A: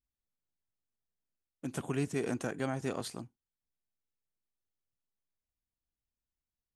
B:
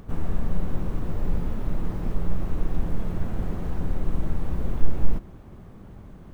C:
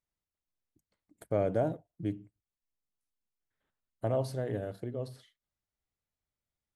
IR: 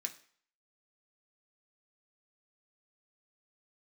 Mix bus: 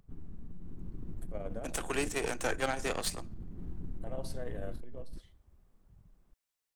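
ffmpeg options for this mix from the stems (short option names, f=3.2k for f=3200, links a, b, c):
-filter_complex "[0:a]highpass=f=330:w=0.5412,highpass=f=330:w=1.3066,volume=0.5dB,asplit=2[a][b];[b]volume=-5.5dB[c];[1:a]afwtdn=0.0501,alimiter=limit=-16.5dB:level=0:latency=1:release=22,acompressor=threshold=-21dB:ratio=6,volume=-11.5dB[d];[2:a]alimiter=level_in=2dB:limit=-24dB:level=0:latency=1,volume=-2dB,volume=-11.5dB,asplit=2[e][f];[f]volume=-3dB[g];[3:a]atrim=start_sample=2205[h];[c][g]amix=inputs=2:normalize=0[i];[i][h]afir=irnorm=-1:irlink=0[j];[a][d][e][j]amix=inputs=4:normalize=0,lowshelf=f=350:g=-6,dynaudnorm=f=560:g=3:m=4dB,aeval=exprs='0.106*(cos(1*acos(clip(val(0)/0.106,-1,1)))-cos(1*PI/2))+0.0188*(cos(4*acos(clip(val(0)/0.106,-1,1)))-cos(4*PI/2))':c=same"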